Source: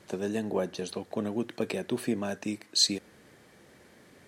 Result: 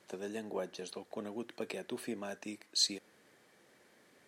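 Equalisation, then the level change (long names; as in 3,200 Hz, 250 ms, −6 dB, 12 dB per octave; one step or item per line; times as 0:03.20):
high-pass filter 350 Hz 6 dB per octave
−6.5 dB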